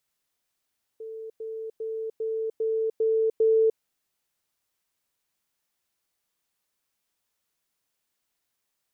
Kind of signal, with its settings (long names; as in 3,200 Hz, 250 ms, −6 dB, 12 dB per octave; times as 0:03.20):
level staircase 444 Hz −35 dBFS, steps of 3 dB, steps 7, 0.30 s 0.10 s